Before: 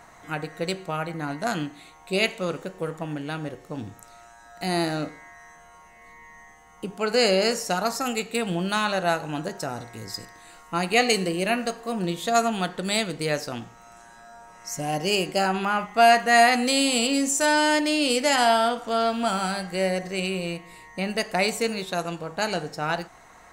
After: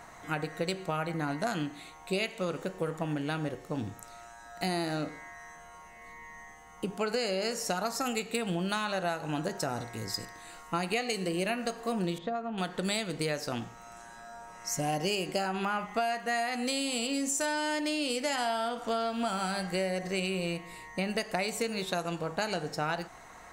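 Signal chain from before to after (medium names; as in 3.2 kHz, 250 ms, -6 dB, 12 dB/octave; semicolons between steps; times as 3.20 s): compression 16:1, threshold -27 dBFS, peak gain reduction 16 dB; 12.18–12.58 s: tape spacing loss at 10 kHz 43 dB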